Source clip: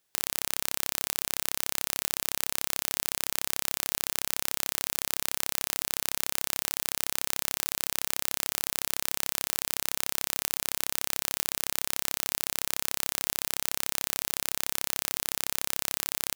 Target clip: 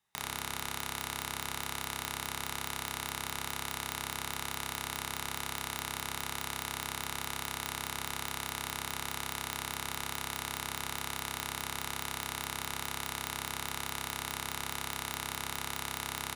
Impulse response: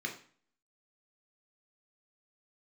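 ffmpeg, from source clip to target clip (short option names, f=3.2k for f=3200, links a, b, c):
-filter_complex "[0:a]aecho=1:1:787:0.0631[a];[1:a]atrim=start_sample=2205,atrim=end_sample=4410,asetrate=24255,aresample=44100[b];[a][b]afir=irnorm=-1:irlink=0,volume=-7dB"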